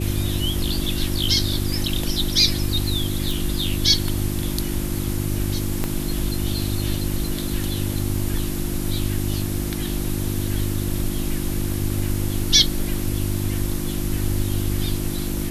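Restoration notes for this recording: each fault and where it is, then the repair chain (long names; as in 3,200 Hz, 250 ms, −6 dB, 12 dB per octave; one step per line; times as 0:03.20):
mains hum 50 Hz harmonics 7 −27 dBFS
0:03.31: click
0:05.84: click −9 dBFS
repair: click removal
hum removal 50 Hz, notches 7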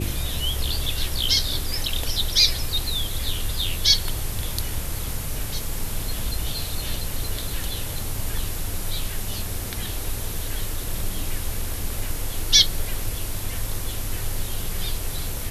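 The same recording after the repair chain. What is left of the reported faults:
0:05.84: click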